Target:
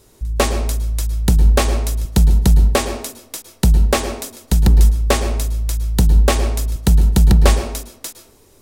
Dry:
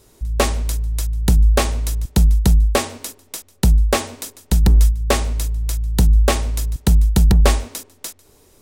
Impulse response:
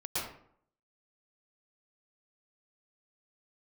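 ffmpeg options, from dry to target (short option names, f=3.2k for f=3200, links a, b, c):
-filter_complex "[0:a]asplit=2[a][b];[b]lowshelf=f=450:g=8[c];[1:a]atrim=start_sample=2205,lowshelf=f=140:g=-9.5[d];[c][d]afir=irnorm=-1:irlink=0,volume=-14.5dB[e];[a][e]amix=inputs=2:normalize=0"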